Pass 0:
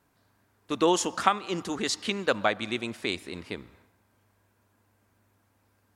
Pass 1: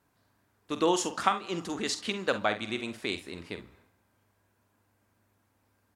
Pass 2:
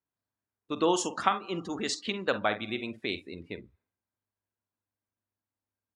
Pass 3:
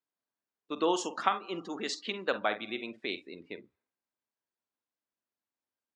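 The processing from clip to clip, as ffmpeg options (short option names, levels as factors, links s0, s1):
-af "aecho=1:1:47|66:0.282|0.133,volume=0.708"
-af "afftdn=nr=23:nf=-43"
-af "highpass=250,lowpass=6200,volume=0.794"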